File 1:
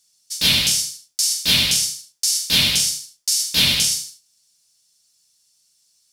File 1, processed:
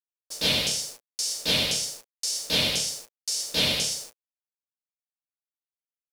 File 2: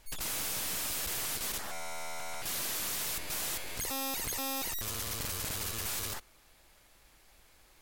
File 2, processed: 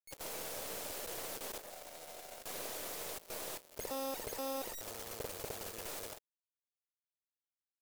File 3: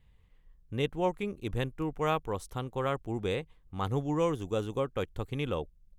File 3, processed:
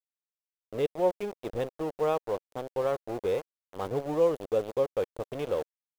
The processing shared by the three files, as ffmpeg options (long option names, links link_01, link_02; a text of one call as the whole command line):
ffmpeg -i in.wav -filter_complex "[0:a]acrossover=split=8800[link_01][link_02];[link_02]acompressor=threshold=-31dB:ratio=4:attack=1:release=60[link_03];[link_01][link_03]amix=inputs=2:normalize=0,aeval=exprs='val(0)*gte(abs(val(0)),0.0211)':channel_layout=same,equalizer=frequency=520:width=0.96:gain=14.5,volume=-8dB" out.wav